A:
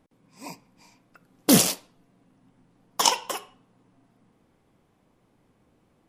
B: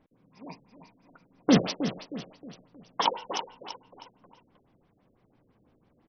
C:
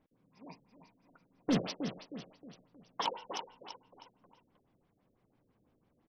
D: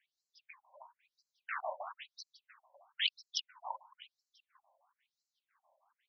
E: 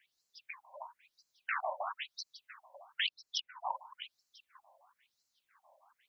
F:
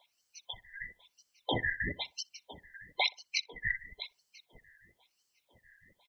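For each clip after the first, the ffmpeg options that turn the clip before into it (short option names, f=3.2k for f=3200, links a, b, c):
-filter_complex "[0:a]asplit=2[a][b];[b]aecho=0:1:314|628|942|1256:0.316|0.13|0.0532|0.0218[c];[a][c]amix=inputs=2:normalize=0,afftfilt=real='re*lt(b*sr/1024,610*pow(6300/610,0.5+0.5*sin(2*PI*6*pts/sr)))':imag='im*lt(b*sr/1024,610*pow(6300/610,0.5+0.5*sin(2*PI*6*pts/sr)))':win_size=1024:overlap=0.75,volume=-1.5dB"
-af "asoftclip=type=tanh:threshold=-14dB,volume=-7.5dB"
-af "volume=29.5dB,asoftclip=hard,volume=-29.5dB,afftfilt=real='re*between(b*sr/1024,740*pow(5700/740,0.5+0.5*sin(2*PI*1*pts/sr))/1.41,740*pow(5700/740,0.5+0.5*sin(2*PI*1*pts/sr))*1.41)':imag='im*between(b*sr/1024,740*pow(5700/740,0.5+0.5*sin(2*PI*1*pts/sr))/1.41,740*pow(5700/740,0.5+0.5*sin(2*PI*1*pts/sr))*1.41)':win_size=1024:overlap=0.75,volume=10dB"
-filter_complex "[0:a]acrossover=split=840|2700[a][b][c];[a]acompressor=threshold=-49dB:ratio=4[d];[b]acompressor=threshold=-45dB:ratio=4[e];[c]acompressor=threshold=-49dB:ratio=4[f];[d][e][f]amix=inputs=3:normalize=0,volume=8.5dB"
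-filter_complex "[0:a]afftfilt=real='real(if(lt(b,960),b+48*(1-2*mod(floor(b/48),2)),b),0)':imag='imag(if(lt(b,960),b+48*(1-2*mod(floor(b/48),2)),b),0)':win_size=2048:overlap=0.75,asplit=2[a][b];[b]adelay=62,lowpass=f=1.2k:p=1,volume=-18.5dB,asplit=2[c][d];[d]adelay=62,lowpass=f=1.2k:p=1,volume=0.35,asplit=2[e][f];[f]adelay=62,lowpass=f=1.2k:p=1,volume=0.35[g];[a][c][e][g]amix=inputs=4:normalize=0,volume=4dB"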